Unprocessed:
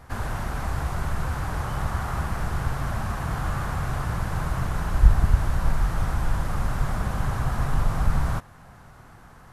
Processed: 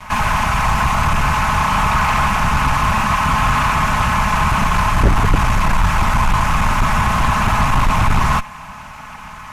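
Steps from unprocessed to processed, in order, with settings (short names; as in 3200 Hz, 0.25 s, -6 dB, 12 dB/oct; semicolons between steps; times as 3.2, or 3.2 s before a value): minimum comb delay 4.7 ms; fifteen-band EQ 100 Hz +7 dB, 400 Hz -12 dB, 1000 Hz +12 dB, 2500 Hz +12 dB, 6300 Hz +6 dB; in parallel at -12 dB: sine folder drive 18 dB, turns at 0 dBFS; on the sum: gain -1 dB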